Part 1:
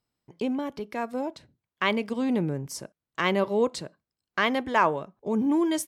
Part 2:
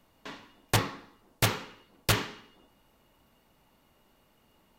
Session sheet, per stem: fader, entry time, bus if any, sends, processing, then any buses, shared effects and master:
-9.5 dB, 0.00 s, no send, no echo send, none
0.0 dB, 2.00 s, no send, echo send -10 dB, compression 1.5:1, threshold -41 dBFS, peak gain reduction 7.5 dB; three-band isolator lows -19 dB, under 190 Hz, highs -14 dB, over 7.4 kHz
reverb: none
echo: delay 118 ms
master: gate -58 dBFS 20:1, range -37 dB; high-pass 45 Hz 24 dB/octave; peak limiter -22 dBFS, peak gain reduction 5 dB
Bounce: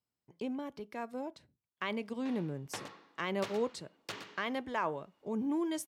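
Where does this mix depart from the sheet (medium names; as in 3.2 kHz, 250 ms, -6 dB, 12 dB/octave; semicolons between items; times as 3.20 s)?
stem 2 0.0 dB -> -8.5 dB; master: missing gate -58 dBFS 20:1, range -37 dB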